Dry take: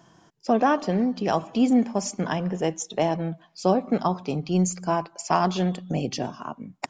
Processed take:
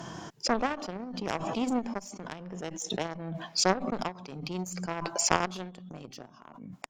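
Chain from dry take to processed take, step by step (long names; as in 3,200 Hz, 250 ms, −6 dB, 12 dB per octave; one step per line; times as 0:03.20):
harmonic generator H 3 −10 dB, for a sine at −6.5 dBFS
background raised ahead of every attack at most 34 dB per second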